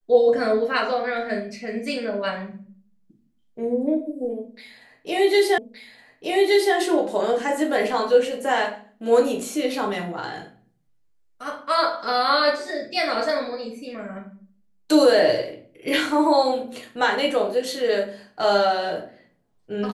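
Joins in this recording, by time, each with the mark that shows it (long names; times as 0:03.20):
0:05.58: the same again, the last 1.17 s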